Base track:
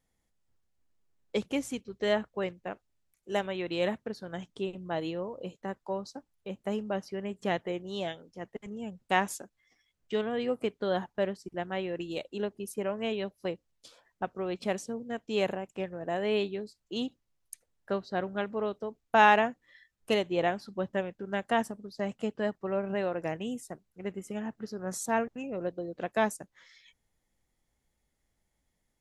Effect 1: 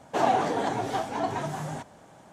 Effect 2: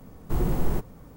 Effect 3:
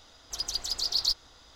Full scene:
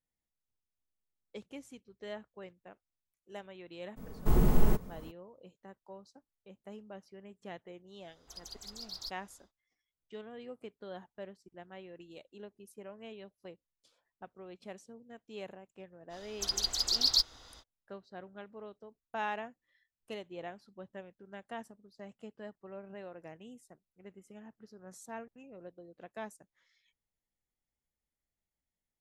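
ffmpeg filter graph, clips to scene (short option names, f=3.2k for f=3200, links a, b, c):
-filter_complex "[3:a]asplit=2[a][b];[0:a]volume=-15.5dB[c];[2:a]aecho=1:1:4.7:0.35[d];[a]equalizer=f=3.9k:t=o:w=2.2:g=-6[e];[d]atrim=end=1.16,asetpts=PTS-STARTPTS,volume=-1dB,afade=t=in:d=0.02,afade=t=out:st=1.14:d=0.02,adelay=3960[f];[e]atrim=end=1.55,asetpts=PTS-STARTPTS,volume=-11dB,afade=t=in:d=0.1,afade=t=out:st=1.45:d=0.1,adelay=7970[g];[b]atrim=end=1.55,asetpts=PTS-STARTPTS,afade=t=in:d=0.05,afade=t=out:st=1.5:d=0.05,adelay=16090[h];[c][f][g][h]amix=inputs=4:normalize=0"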